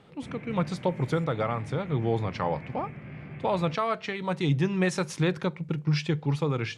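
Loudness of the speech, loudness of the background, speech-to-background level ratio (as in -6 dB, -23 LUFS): -29.0 LUFS, -42.5 LUFS, 13.5 dB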